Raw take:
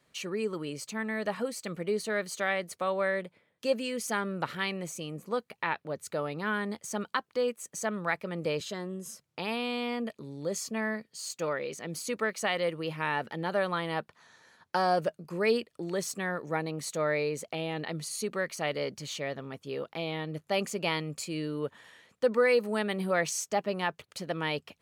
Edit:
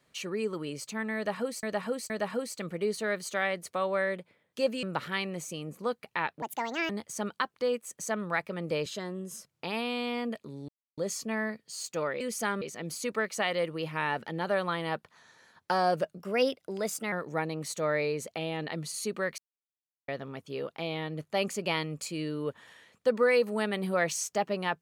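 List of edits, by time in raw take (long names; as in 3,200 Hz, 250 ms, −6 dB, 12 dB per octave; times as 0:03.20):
0:01.16–0:01.63: repeat, 3 plays
0:03.89–0:04.30: move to 0:11.66
0:05.89–0:06.64: play speed 158%
0:10.43: splice in silence 0.29 s
0:15.22–0:16.29: play speed 113%
0:18.55–0:19.25: silence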